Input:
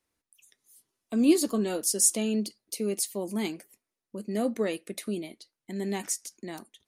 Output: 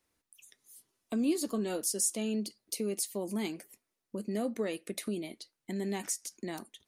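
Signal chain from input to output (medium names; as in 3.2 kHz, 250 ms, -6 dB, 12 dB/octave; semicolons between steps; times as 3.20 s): compression 2:1, threshold -38 dBFS, peak gain reduction 12.5 dB; trim +2.5 dB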